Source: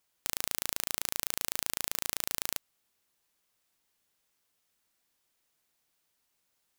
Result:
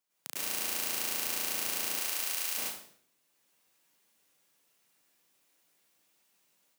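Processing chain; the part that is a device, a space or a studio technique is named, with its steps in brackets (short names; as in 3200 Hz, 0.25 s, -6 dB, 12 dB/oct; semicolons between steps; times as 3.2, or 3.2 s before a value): far laptop microphone (reverb RT60 0.60 s, pre-delay 95 ms, DRR -8 dB; HPF 140 Hz 24 dB/oct; AGC gain up to 5.5 dB); 1.99–2.56 HPF 470 Hz -> 1400 Hz 6 dB/oct; gain -8 dB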